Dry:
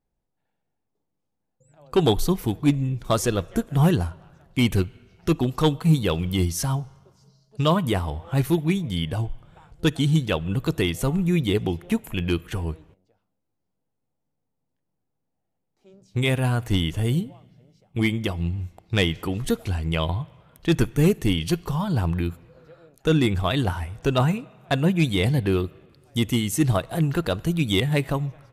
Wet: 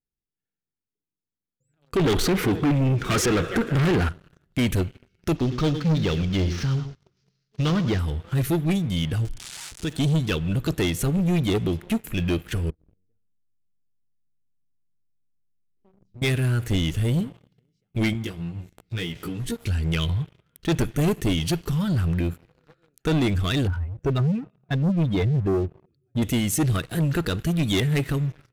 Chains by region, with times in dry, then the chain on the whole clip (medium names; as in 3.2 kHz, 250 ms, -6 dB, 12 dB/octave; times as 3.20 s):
1.97–4.09 s: treble shelf 3.2 kHz -11 dB + overdrive pedal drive 28 dB, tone 2.8 kHz, clips at -9.5 dBFS
5.36–7.99 s: CVSD coder 32 kbps + delay 106 ms -13.5 dB
9.25–9.93 s: zero-crossing glitches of -22.5 dBFS + low-pass 9.3 kHz 24 dB/octave + compression 2:1, threshold -34 dBFS
12.70–16.22 s: tilt EQ -4.5 dB/octave + compression 4:1, threshold -41 dBFS + feedback comb 230 Hz, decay 0.38 s
18.13–19.65 s: compression 2.5:1, threshold -36 dBFS + doubling 17 ms -3 dB
23.67–26.22 s: spectral contrast enhancement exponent 1.8 + high-pass 45 Hz 6 dB/octave
whole clip: high-order bell 770 Hz -12 dB 1.2 oct; waveshaping leveller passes 3; trim -7.5 dB